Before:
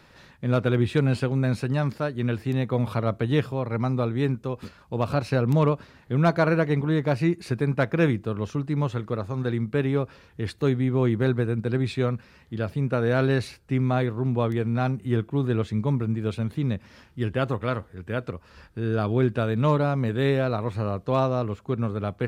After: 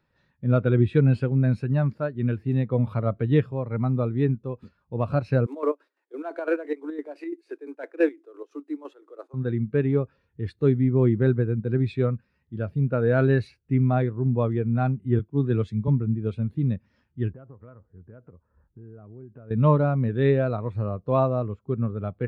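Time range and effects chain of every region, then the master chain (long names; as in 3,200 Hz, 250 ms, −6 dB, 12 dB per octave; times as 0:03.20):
0:05.46–0:09.34: variable-slope delta modulation 64 kbit/s + Butterworth high-pass 280 Hz 96 dB per octave + square-wave tremolo 5.9 Hz, depth 65%
0:15.19–0:15.88: high-shelf EQ 3,600 Hz +8 dB + multiband upward and downward expander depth 70%
0:17.32–0:19.51: low-pass that shuts in the quiet parts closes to 1,100 Hz, open at −19 dBFS + low-pass filter 1,800 Hz + downward compressor, threshold −34 dBFS
whole clip: dynamic equaliser 2,100 Hz, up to +3 dB, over −40 dBFS, Q 0.89; every bin expanded away from the loudest bin 1.5 to 1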